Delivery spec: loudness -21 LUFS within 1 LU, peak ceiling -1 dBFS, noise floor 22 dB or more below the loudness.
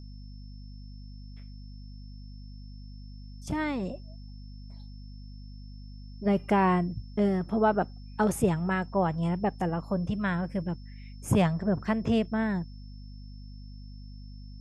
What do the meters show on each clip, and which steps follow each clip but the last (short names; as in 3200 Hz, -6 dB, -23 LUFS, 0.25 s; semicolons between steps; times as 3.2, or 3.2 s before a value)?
hum 50 Hz; harmonics up to 250 Hz; hum level -41 dBFS; steady tone 5300 Hz; tone level -59 dBFS; loudness -28.5 LUFS; peak -12.0 dBFS; loudness target -21.0 LUFS
-> notches 50/100/150/200/250 Hz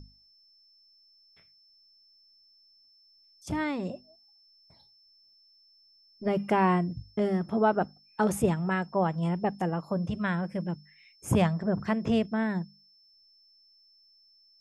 hum none; steady tone 5300 Hz; tone level -59 dBFS
-> notch 5300 Hz, Q 30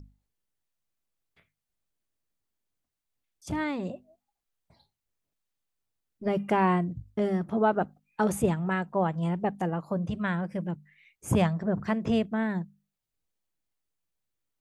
steady tone none; loudness -29.0 LUFS; peak -11.5 dBFS; loudness target -21.0 LUFS
-> gain +8 dB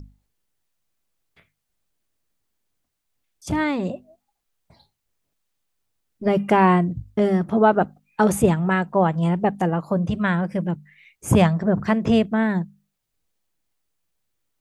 loudness -21.0 LUFS; peak -3.5 dBFS; noise floor -78 dBFS